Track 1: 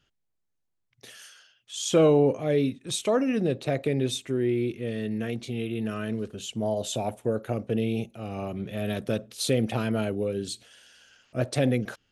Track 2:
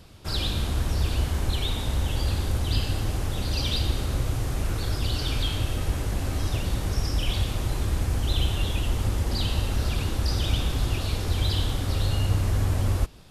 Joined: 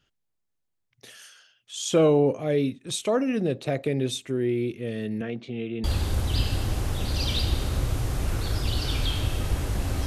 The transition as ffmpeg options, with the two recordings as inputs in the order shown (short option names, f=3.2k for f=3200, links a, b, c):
-filter_complex "[0:a]asettb=1/sr,asplit=3[a][b][c];[a]atrim=end=5.214[d];[b]atrim=start=5.21:end=5.84,asetpts=PTS-STARTPTS,afade=t=in:d=0.004:c=qsin,afade=t=out:st=0.626:d=0.004:c=qsin,highpass=130,lowpass=3k[e];[c]atrim=start=5.836[f];[d][e]acrossfade=d=0.004:c1=hsin:c2=qsin[g];[g][f]acrossfade=d=0.004:c1=qsin:c2=hsin,apad=whole_dur=10.06,atrim=end=10.06,atrim=end=5.842[h];[1:a]atrim=start=2.208:end=6.43[i];[h][i]acrossfade=d=0.004:c1=hsin:c2=hsin"